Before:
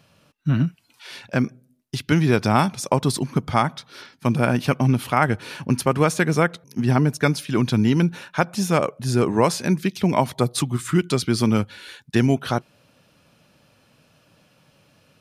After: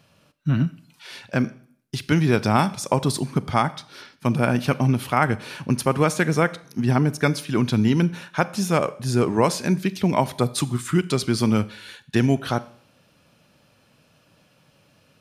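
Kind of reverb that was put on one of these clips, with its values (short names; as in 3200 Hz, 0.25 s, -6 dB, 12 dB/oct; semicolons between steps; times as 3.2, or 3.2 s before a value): Schroeder reverb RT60 0.56 s, combs from 29 ms, DRR 16.5 dB; gain -1 dB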